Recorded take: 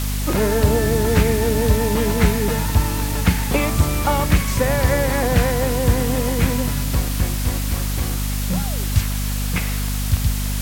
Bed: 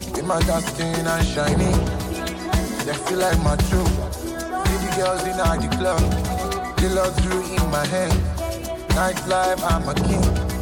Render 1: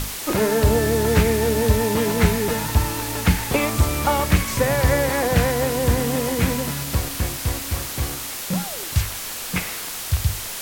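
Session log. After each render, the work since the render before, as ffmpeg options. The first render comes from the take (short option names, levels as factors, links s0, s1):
-af "bandreject=f=50:t=h:w=6,bandreject=f=100:t=h:w=6,bandreject=f=150:t=h:w=6,bandreject=f=200:t=h:w=6,bandreject=f=250:t=h:w=6,bandreject=f=300:t=h:w=6"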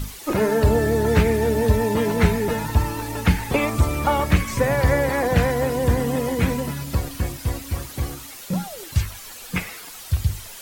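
-af "afftdn=nr=11:nf=-31"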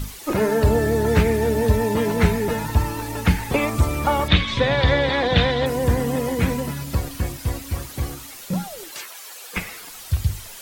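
-filter_complex "[0:a]asettb=1/sr,asplit=3[s0][s1][s2];[s0]atrim=end=4.284[s3];[s1]atrim=start=4.28:end=5.66,asetpts=PTS-STARTPTS,afade=t=in:d=0.004:c=qsin,afade=t=out:st=1.376:d=0.004:c=qsin,lowpass=f=3600:t=q:w=10[s4];[s2]atrim=start=5.656[s5];[s3][s4]acrossfade=d=0.004:c1=hsin:c2=qsin[s6];[s6][s5]acrossfade=d=0.004:c1=qsin:c2=hsin,asettb=1/sr,asplit=3[s7][s8][s9];[s7]atrim=end=8.914[s10];[s8]atrim=start=8.91:end=9.57,asetpts=PTS-STARTPTS,afade=t=in:d=0.004:c=qsin,afade=t=out:st=0.656:d=0.004:c=qsin,highpass=f=380:w=0.5412,highpass=f=380:w=1.3066[s11];[s9]atrim=start=9.566[s12];[s10][s11]acrossfade=d=0.004:c1=hsin:c2=qsin[s13];[s13][s12]acrossfade=d=0.004:c1=qsin:c2=hsin"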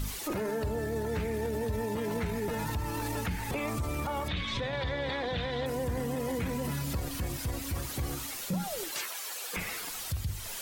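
-af "acompressor=threshold=0.0447:ratio=3,alimiter=level_in=1.12:limit=0.0631:level=0:latency=1:release=21,volume=0.891"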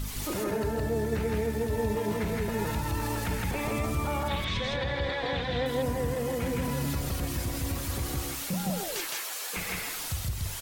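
-af "aecho=1:1:131.2|163.3:0.316|0.891"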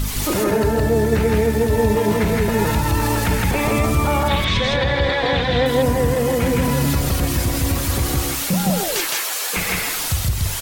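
-af "volume=3.98"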